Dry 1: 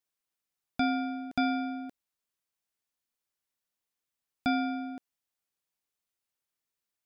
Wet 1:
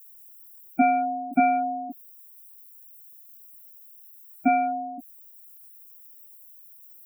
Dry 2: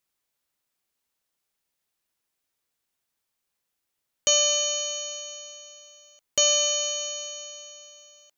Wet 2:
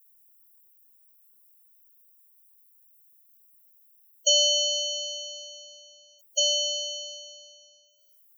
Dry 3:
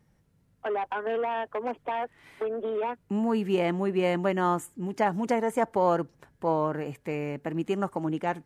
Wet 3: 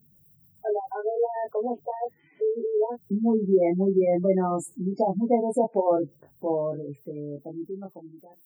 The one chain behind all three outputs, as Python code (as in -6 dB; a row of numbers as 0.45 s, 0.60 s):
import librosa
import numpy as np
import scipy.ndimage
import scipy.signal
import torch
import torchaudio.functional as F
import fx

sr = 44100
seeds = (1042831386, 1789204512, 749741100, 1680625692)

y = fx.fade_out_tail(x, sr, length_s=2.81)
y = fx.highpass(y, sr, hz=130.0, slope=6)
y = fx.dynamic_eq(y, sr, hz=2300.0, q=2.3, threshold_db=-47.0, ratio=4.0, max_db=5)
y = fx.dmg_noise_colour(y, sr, seeds[0], colour='violet', level_db=-61.0)
y = fx.spec_gate(y, sr, threshold_db=-10, keep='strong')
y = fx.band_shelf(y, sr, hz=1500.0, db=-12.5, octaves=1.7)
y = fx.doubler(y, sr, ms=21.0, db=-3.0)
y = y * 10.0 ** (-9 / 20.0) / np.max(np.abs(y))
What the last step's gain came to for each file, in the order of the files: +12.0 dB, +1.5 dB, +4.0 dB